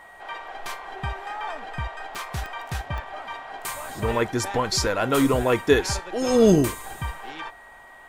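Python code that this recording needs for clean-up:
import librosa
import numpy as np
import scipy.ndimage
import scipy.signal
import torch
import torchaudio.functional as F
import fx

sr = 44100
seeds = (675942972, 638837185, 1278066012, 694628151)

y = fx.fix_declick_ar(x, sr, threshold=10.0)
y = fx.notch(y, sr, hz=1900.0, q=30.0)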